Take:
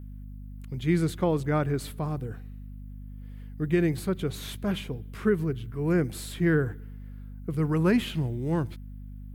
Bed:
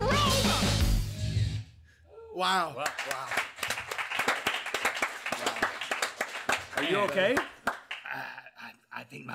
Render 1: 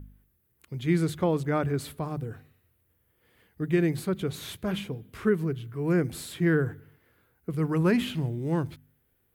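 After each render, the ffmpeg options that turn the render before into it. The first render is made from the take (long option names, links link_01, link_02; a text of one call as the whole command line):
ffmpeg -i in.wav -af "bandreject=frequency=50:width_type=h:width=4,bandreject=frequency=100:width_type=h:width=4,bandreject=frequency=150:width_type=h:width=4,bandreject=frequency=200:width_type=h:width=4,bandreject=frequency=250:width_type=h:width=4" out.wav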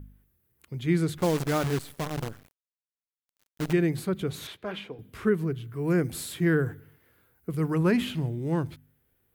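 ffmpeg -i in.wav -filter_complex "[0:a]asettb=1/sr,asplit=3[link_01][link_02][link_03];[link_01]atrim=end=1.184[link_04];[link_02]atrim=start=1.18:end=3.73,asetpts=PTS-STARTPTS,afade=type=in:duration=0.004:curve=qsin,afade=type=out:start_time=2.546:duration=0.004:curve=qsin,acrusher=bits=6:dc=4:mix=0:aa=0.000001[link_05];[link_03]atrim=start=3.726[link_06];[link_04][link_05]acrossfade=duration=0.004:curve1=hsin:curve2=qsin[link_07];[link_07][link_06]acrossfade=duration=0.004:curve1=qsin:curve2=hsin,asettb=1/sr,asplit=3[link_08][link_09][link_10];[link_08]atrim=end=4.474[link_11];[link_09]atrim=start=4.47:end=4.99,asetpts=PTS-STARTPTS,afade=type=in:duration=0.004:curve=qsin,afade=type=out:start_time=0.516:duration=0.004:curve=qsin,acrossover=split=310 4500:gain=0.178 1 0.178[link_12][link_13][link_14];[link_12][link_13][link_14]amix=inputs=3:normalize=0[link_15];[link_10]atrim=start=4.986[link_16];[link_11][link_15]acrossfade=duration=0.004:curve1=hsin:curve2=qsin[link_17];[link_17][link_16]acrossfade=duration=0.004:curve1=qsin:curve2=hsin,asettb=1/sr,asplit=3[link_18][link_19][link_20];[link_18]atrim=end=5.714[link_21];[link_19]atrim=start=5.71:end=7.75,asetpts=PTS-STARTPTS,afade=type=in:duration=0.004:curve=qsin,afade=type=out:start_time=2.036:duration=0.004:curve=qsin,highshelf=frequency=5800:gain=5.5[link_22];[link_20]atrim=start=7.746[link_23];[link_21][link_22]acrossfade=duration=0.004:curve1=hsin:curve2=qsin[link_24];[link_24][link_23]acrossfade=duration=0.004:curve1=qsin:curve2=hsin" out.wav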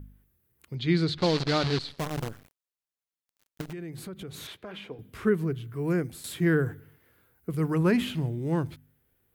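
ffmpeg -i in.wav -filter_complex "[0:a]asettb=1/sr,asplit=3[link_01][link_02][link_03];[link_01]atrim=end=0.754[link_04];[link_02]atrim=start=0.75:end=1.99,asetpts=PTS-STARTPTS,afade=type=in:duration=0.004:curve=qsin,afade=type=out:start_time=1.236:duration=0.004:curve=qsin,lowpass=frequency=4300:width_type=q:width=4.9[link_05];[link_03]atrim=start=1.986[link_06];[link_04][link_05]acrossfade=duration=0.004:curve1=hsin:curve2=qsin[link_07];[link_07][link_06]acrossfade=duration=0.004:curve1=qsin:curve2=hsin,asettb=1/sr,asplit=3[link_08][link_09][link_10];[link_08]atrim=end=3.614[link_11];[link_09]atrim=start=3.61:end=4.91,asetpts=PTS-STARTPTS,afade=type=in:duration=0.004:curve=qsin,afade=type=out:start_time=1.296:duration=0.004:curve=qsin,acompressor=threshold=-37dB:ratio=5:attack=3.2:release=140:knee=1:detection=peak[link_12];[link_10]atrim=start=4.906[link_13];[link_11][link_12]acrossfade=duration=0.004:curve1=hsin:curve2=qsin[link_14];[link_14][link_13]acrossfade=duration=0.004:curve1=qsin:curve2=hsin,asplit=2[link_15][link_16];[link_15]atrim=end=6.24,asetpts=PTS-STARTPTS,afade=type=out:start_time=5.8:duration=0.44:silence=0.281838[link_17];[link_16]atrim=start=6.24,asetpts=PTS-STARTPTS,afade=type=in:duration=0.004:curve=hsin:silence=0.281838[link_18];[link_17][link_18]concat=n=2:v=0:a=1" out.wav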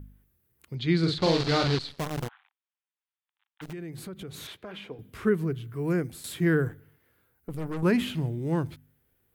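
ffmpeg -i in.wav -filter_complex "[0:a]asettb=1/sr,asplit=3[link_01][link_02][link_03];[link_01]atrim=end=0.994[link_04];[link_02]atrim=start=0.99:end=1.75,asetpts=PTS-STARTPTS,afade=type=in:duration=0.004:curve=qsin,afade=type=out:start_time=0.756:duration=0.004:curve=qsin,asplit=2[link_05][link_06];[link_06]adelay=42,volume=-4dB[link_07];[link_05][link_07]amix=inputs=2:normalize=0,atrim=end_sample=33516[link_08];[link_03]atrim=start=1.746[link_09];[link_04][link_08]acrossfade=duration=0.004:curve1=hsin:curve2=qsin[link_10];[link_10][link_09]acrossfade=duration=0.004:curve1=qsin:curve2=hsin,asplit=3[link_11][link_12][link_13];[link_11]afade=type=out:start_time=2.27:duration=0.02[link_14];[link_12]asuperpass=centerf=1700:order=20:qfactor=0.59,afade=type=in:start_time=2.27:duration=0.02,afade=type=out:start_time=3.61:duration=0.02[link_15];[link_13]afade=type=in:start_time=3.61:duration=0.02[link_16];[link_14][link_15][link_16]amix=inputs=3:normalize=0,asettb=1/sr,asplit=3[link_17][link_18][link_19];[link_17]atrim=end=6.684[link_20];[link_18]atrim=start=6.68:end=7.83,asetpts=PTS-STARTPTS,afade=type=in:duration=0.004:curve=qsin,afade=type=out:start_time=1.146:duration=0.004:curve=qsin,aeval=exprs='(tanh(31.6*val(0)+0.7)-tanh(0.7))/31.6':channel_layout=same[link_21];[link_19]atrim=start=7.826[link_22];[link_20][link_21]acrossfade=duration=0.004:curve1=hsin:curve2=qsin[link_23];[link_23][link_22]acrossfade=duration=0.004:curve1=qsin:curve2=hsin" out.wav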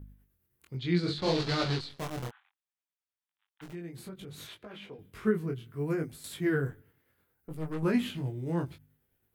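ffmpeg -i in.wav -af "tremolo=f=9.3:d=0.36,flanger=delay=19:depth=4.3:speed=0.65" out.wav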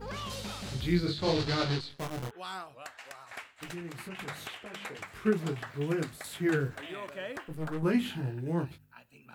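ffmpeg -i in.wav -i bed.wav -filter_complex "[1:a]volume=-13.5dB[link_01];[0:a][link_01]amix=inputs=2:normalize=0" out.wav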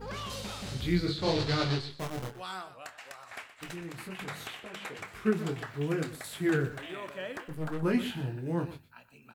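ffmpeg -i in.wav -filter_complex "[0:a]asplit=2[link_01][link_02];[link_02]adelay=27,volume=-13dB[link_03];[link_01][link_03]amix=inputs=2:normalize=0,aecho=1:1:122:0.2" out.wav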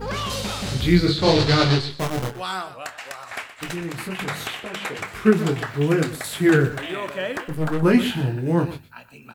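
ffmpeg -i in.wav -af "volume=11.5dB" out.wav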